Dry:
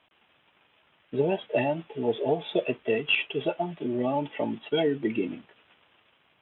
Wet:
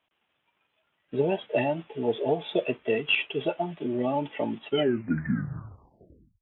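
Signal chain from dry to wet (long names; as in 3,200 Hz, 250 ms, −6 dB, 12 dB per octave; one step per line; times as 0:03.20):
turntable brake at the end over 1.76 s
noise reduction from a noise print of the clip's start 11 dB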